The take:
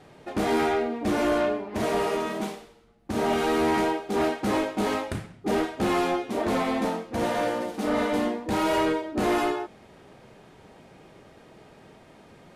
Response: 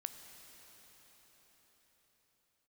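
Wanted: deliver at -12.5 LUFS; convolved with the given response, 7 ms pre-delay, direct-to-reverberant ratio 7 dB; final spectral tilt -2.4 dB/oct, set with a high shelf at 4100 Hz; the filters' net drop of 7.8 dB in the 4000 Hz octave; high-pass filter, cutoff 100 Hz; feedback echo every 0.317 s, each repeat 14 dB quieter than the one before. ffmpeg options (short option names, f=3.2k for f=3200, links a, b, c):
-filter_complex "[0:a]highpass=100,equalizer=f=4k:t=o:g=-8,highshelf=f=4.1k:g=-5.5,aecho=1:1:317|634:0.2|0.0399,asplit=2[a][b];[1:a]atrim=start_sample=2205,adelay=7[c];[b][c]afir=irnorm=-1:irlink=0,volume=-4.5dB[d];[a][d]amix=inputs=2:normalize=0,volume=13.5dB"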